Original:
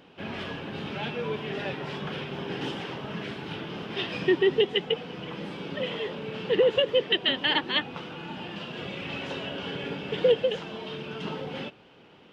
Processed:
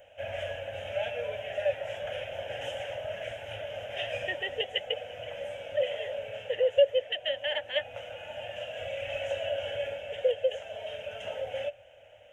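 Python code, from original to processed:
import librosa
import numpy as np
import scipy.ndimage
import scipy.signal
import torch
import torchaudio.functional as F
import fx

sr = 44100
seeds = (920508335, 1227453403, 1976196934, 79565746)

y = fx.curve_eq(x, sr, hz=(110.0, 150.0, 260.0, 380.0, 580.0, 1100.0, 1600.0, 3100.0, 4400.0, 6500.0), db=(0, -26, -23, -27, 13, -21, -3, -3, -27, 3))
y = fx.rider(y, sr, range_db=3, speed_s=0.5)
y = F.gain(torch.from_numpy(y), -2.0).numpy()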